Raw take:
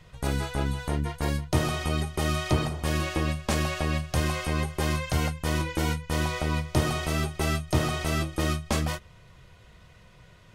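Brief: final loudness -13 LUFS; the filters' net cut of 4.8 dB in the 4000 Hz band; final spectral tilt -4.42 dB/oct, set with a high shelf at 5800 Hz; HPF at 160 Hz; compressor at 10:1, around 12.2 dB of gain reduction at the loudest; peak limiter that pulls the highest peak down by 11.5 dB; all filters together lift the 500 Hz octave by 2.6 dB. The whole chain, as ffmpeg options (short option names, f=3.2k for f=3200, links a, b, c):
-af "highpass=160,equalizer=f=500:t=o:g=3.5,equalizer=f=4k:t=o:g=-9,highshelf=f=5.8k:g=6.5,acompressor=threshold=-34dB:ratio=10,volume=28.5dB,alimiter=limit=-2dB:level=0:latency=1"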